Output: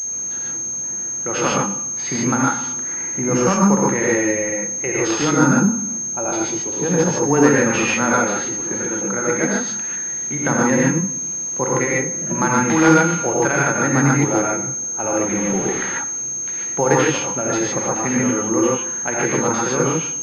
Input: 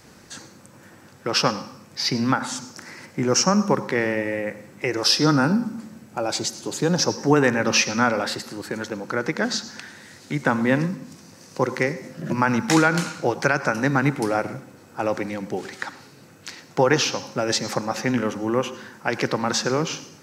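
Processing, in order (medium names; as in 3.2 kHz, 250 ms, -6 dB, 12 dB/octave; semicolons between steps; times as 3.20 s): 15.23–15.86 s: jump at every zero crossing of -27.5 dBFS; gated-style reverb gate 170 ms rising, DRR -4 dB; class-D stage that switches slowly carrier 6.4 kHz; trim -1.5 dB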